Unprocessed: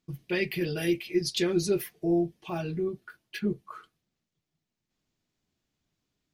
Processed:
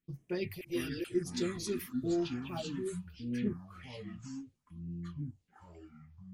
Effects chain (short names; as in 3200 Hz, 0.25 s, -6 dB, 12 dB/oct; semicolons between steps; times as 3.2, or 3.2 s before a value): phaser stages 4, 0.99 Hz, lowest notch 100–4200 Hz; 0.61–1.04 reverse; echoes that change speed 0.319 s, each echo -6 st, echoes 2, each echo -6 dB; 1.66–2.62 three-band squash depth 40%; gain -6.5 dB